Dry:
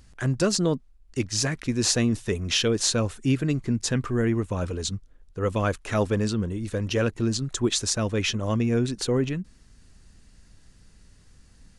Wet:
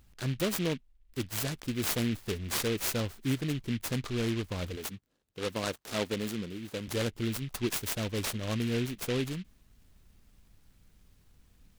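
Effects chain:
0:04.76–0:06.88: high-pass filter 160 Hz 12 dB per octave
short delay modulated by noise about 2,500 Hz, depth 0.13 ms
level −7.5 dB

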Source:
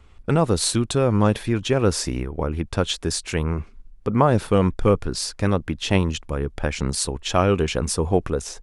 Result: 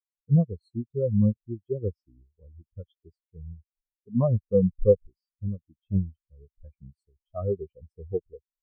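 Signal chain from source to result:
every bin expanded away from the loudest bin 4 to 1
level −4.5 dB

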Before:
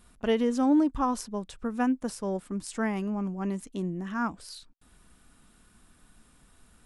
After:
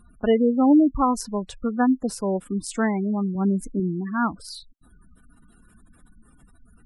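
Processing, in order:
gate on every frequency bin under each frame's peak −20 dB strong
0:03.35–0:03.80: low-shelf EQ 130 Hz +11 dB
level +6.5 dB

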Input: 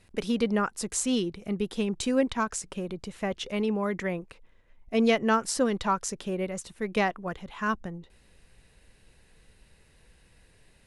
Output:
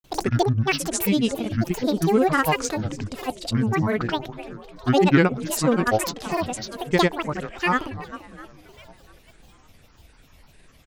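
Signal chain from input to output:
echo with shifted repeats 375 ms, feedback 48%, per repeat +35 Hz, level −14 dB
granular cloud, pitch spread up and down by 12 semitones
level +7 dB

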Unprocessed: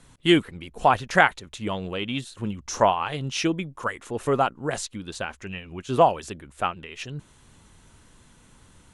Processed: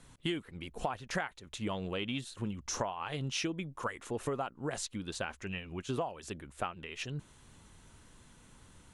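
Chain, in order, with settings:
downward compressor 20 to 1, threshold −27 dBFS, peak gain reduction 17 dB
level −4 dB

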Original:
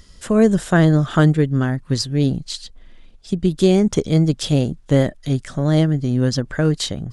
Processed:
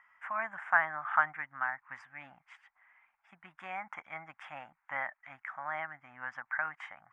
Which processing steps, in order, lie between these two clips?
elliptic band-pass filter 820–2,200 Hz, stop band 40 dB
level −2 dB

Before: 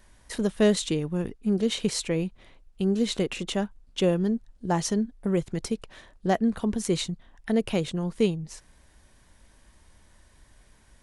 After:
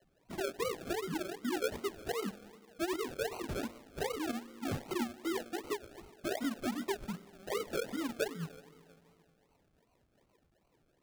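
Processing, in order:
three sine waves on the formant tracks
downward compressor 6 to 1, threshold −32 dBFS, peak gain reduction 18 dB
four-comb reverb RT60 2.5 s, combs from 30 ms, DRR 14 dB
chorus effect 1.1 Hz, delay 17.5 ms, depth 2.8 ms
sample-and-hold swept by an LFO 36×, swing 60% 2.6 Hz
level +1 dB

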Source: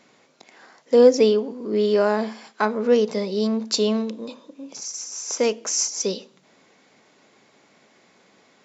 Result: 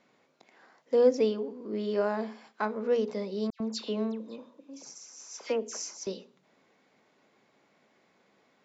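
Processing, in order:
high-shelf EQ 4,700 Hz −11 dB
mains-hum notches 60/120/180/240/300/360/420 Hz
0:03.50–0:06.07: all-pass dispersion lows, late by 101 ms, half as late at 2,600 Hz
level −8.5 dB

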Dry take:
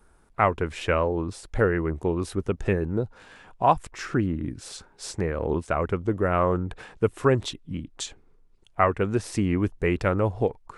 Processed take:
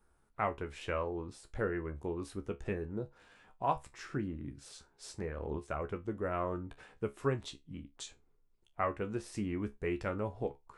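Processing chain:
tuned comb filter 70 Hz, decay 0.18 s, harmonics all, mix 80%
level −7.5 dB

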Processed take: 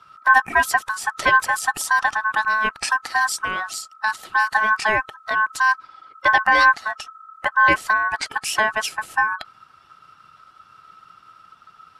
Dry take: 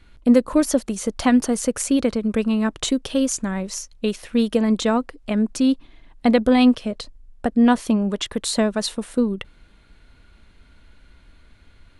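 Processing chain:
spectral magnitudes quantised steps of 15 dB
ring modulation 1,300 Hz
level +3 dB

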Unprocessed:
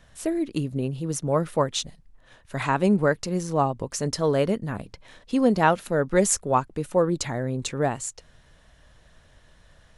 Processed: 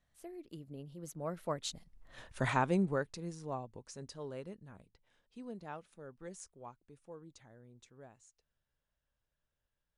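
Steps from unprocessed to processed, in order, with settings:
source passing by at 0:02.25, 21 m/s, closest 2.9 metres
level +1 dB

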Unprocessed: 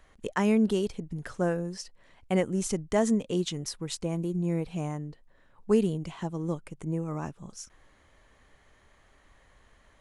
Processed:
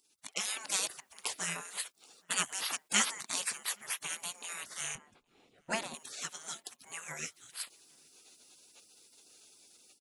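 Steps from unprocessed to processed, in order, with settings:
high-pass filter 1,000 Hz 12 dB per octave
automatic gain control gain up to 11 dB
gate on every frequency bin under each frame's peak −20 dB weak
0:04.95–0:05.94: spectral tilt −4 dB per octave
slap from a distant wall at 140 metres, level −29 dB
level +7.5 dB

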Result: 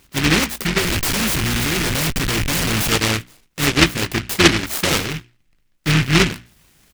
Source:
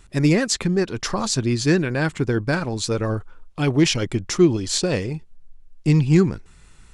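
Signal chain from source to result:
sub-octave generator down 2 octaves, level −1 dB
high-pass filter 200 Hz 6 dB per octave
notch filter 6,600 Hz, Q 6.1
treble cut that deepens with the level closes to 1,000 Hz, closed at −14 dBFS
mains-hum notches 60/120/180/240/300/360 Hz
speech leveller within 3 dB 2 s
0:00.78–0:02.92: comparator with hysteresis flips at −32 dBFS
double-tracking delay 18 ms −11.5 dB
short delay modulated by noise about 2,100 Hz, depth 0.44 ms
level +4 dB

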